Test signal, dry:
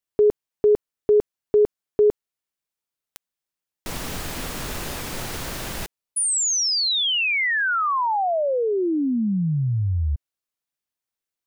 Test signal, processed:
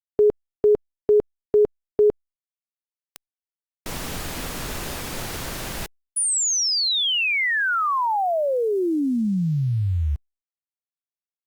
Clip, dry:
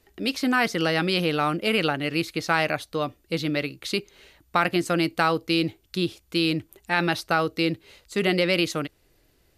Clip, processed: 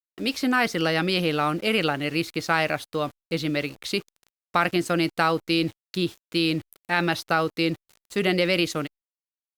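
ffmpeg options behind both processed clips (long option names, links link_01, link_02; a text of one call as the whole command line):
ffmpeg -i in.wav -af "aeval=exprs='val(0)*gte(abs(val(0)),0.00841)':channel_layout=same" -ar 48000 -c:a libopus -b:a 96k out.opus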